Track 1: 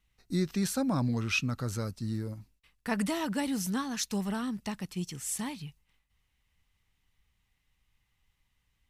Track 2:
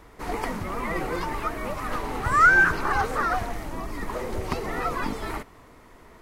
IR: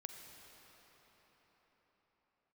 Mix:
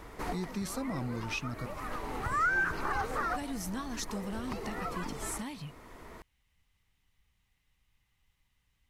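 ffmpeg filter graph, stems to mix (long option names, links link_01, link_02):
-filter_complex "[0:a]volume=0dB,asplit=3[link_01][link_02][link_03];[link_01]atrim=end=1.66,asetpts=PTS-STARTPTS,afade=type=out:start_time=1.656:duration=0.004:curve=hsin[link_04];[link_02]atrim=start=1.66:end=3.35,asetpts=PTS-STARTPTS,volume=0[link_05];[link_03]atrim=start=3.35,asetpts=PTS-STARTPTS,afade=type=in:duration=0.004:curve=hsin[link_06];[link_04][link_05][link_06]concat=n=3:v=0:a=1,asplit=2[link_07][link_08];[1:a]volume=2dB[link_09];[link_08]apad=whole_len=274280[link_10];[link_09][link_10]sidechaincompress=threshold=-36dB:ratio=4:attack=16:release=1260[link_11];[link_07][link_11]amix=inputs=2:normalize=0,acompressor=threshold=-38dB:ratio=2"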